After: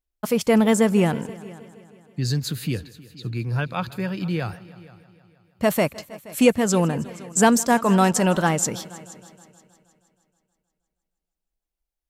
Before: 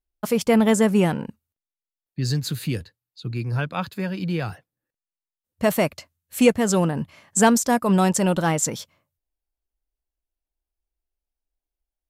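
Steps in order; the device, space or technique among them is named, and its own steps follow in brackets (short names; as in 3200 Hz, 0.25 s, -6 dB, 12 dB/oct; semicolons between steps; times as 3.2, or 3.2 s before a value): multi-head tape echo (multi-head echo 0.158 s, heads all three, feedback 41%, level -23 dB; wow and flutter 24 cents); 7.7–8.47 bell 1500 Hz +4 dB 2.2 oct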